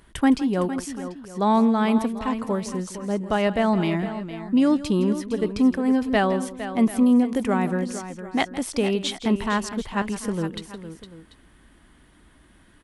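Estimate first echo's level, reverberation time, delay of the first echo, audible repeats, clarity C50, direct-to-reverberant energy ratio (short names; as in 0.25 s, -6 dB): -15.5 dB, none, 0.163 s, 3, none, none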